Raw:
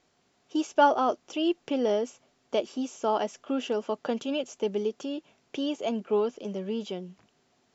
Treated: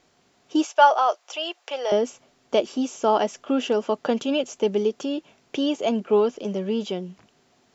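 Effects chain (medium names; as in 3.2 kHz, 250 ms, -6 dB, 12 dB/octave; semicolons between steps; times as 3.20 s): 0.65–1.92 s: high-pass 600 Hz 24 dB/octave; trim +6.5 dB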